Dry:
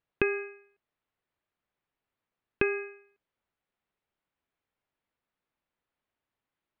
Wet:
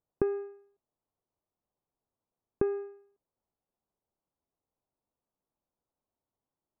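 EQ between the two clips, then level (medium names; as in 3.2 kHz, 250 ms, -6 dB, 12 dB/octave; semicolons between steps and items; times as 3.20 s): low-pass 1 kHz 24 dB/octave; 0.0 dB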